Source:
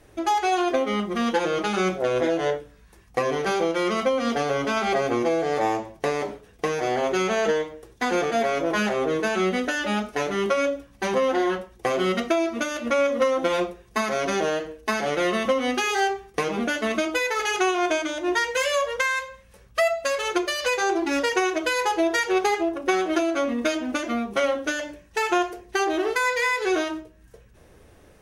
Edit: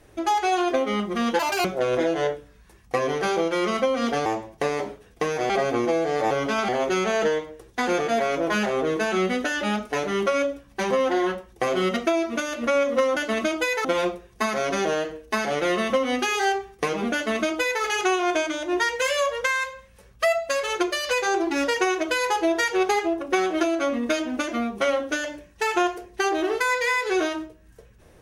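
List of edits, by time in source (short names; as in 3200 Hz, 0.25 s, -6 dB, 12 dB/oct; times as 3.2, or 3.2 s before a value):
1.39–1.88 speed 191%
4.49–4.87 swap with 5.68–6.92
16.7–17.38 copy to 13.4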